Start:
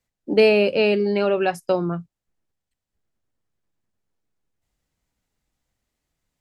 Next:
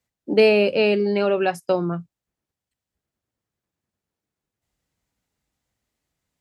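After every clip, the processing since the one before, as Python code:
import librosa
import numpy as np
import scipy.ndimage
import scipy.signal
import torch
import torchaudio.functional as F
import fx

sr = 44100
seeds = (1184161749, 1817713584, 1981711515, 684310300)

y = scipy.signal.sosfilt(scipy.signal.butter(2, 55.0, 'highpass', fs=sr, output='sos'), x)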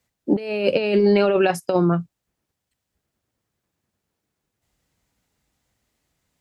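y = fx.over_compress(x, sr, threshold_db=-21.0, ratio=-0.5)
y = y * 10.0 ** (3.5 / 20.0)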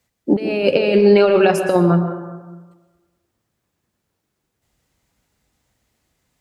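y = fx.rev_plate(x, sr, seeds[0], rt60_s=1.3, hf_ratio=0.4, predelay_ms=105, drr_db=7.0)
y = y * 10.0 ** (3.5 / 20.0)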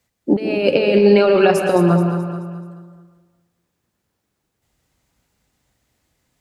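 y = fx.echo_feedback(x, sr, ms=215, feedback_pct=43, wet_db=-9)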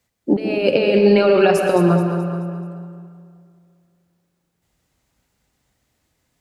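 y = fx.rev_freeverb(x, sr, rt60_s=2.4, hf_ratio=0.65, predelay_ms=15, drr_db=11.0)
y = y * 10.0 ** (-1.0 / 20.0)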